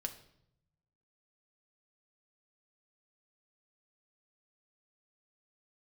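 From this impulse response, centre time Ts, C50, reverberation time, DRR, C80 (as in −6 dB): 10 ms, 12.5 dB, 0.75 s, 5.0 dB, 15.5 dB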